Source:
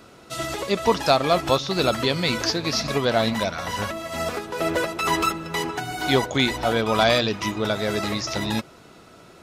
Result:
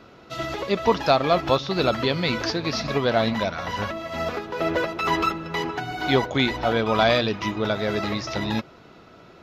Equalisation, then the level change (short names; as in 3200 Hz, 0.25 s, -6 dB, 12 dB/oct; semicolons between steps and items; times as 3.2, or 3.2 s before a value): running mean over 5 samples; 0.0 dB